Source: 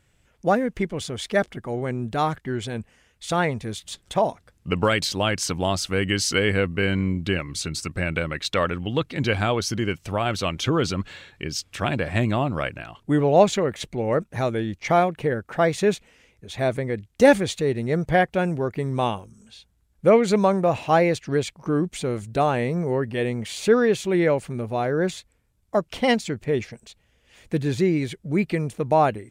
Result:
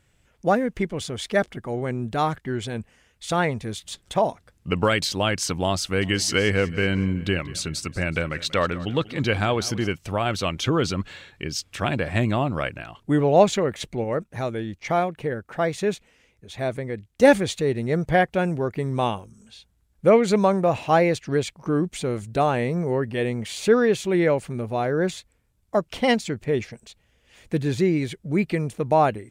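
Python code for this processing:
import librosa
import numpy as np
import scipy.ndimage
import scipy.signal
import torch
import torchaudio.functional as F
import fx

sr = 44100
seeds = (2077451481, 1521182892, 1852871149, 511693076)

y = fx.echo_feedback(x, sr, ms=187, feedback_pct=48, wet_db=-18.0, at=(6.01, 9.86), fade=0.02)
y = fx.edit(y, sr, fx.clip_gain(start_s=14.04, length_s=3.19, db=-3.5), tone=tone)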